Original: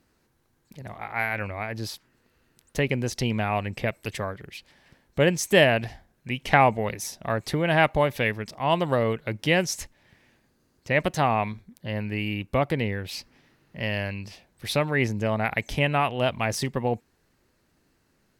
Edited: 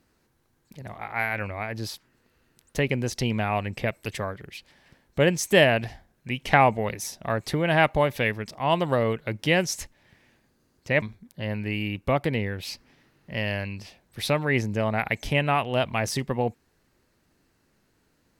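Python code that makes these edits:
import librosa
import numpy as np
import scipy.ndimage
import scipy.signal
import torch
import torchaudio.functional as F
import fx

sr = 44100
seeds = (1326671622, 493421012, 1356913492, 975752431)

y = fx.edit(x, sr, fx.cut(start_s=11.02, length_s=0.46), tone=tone)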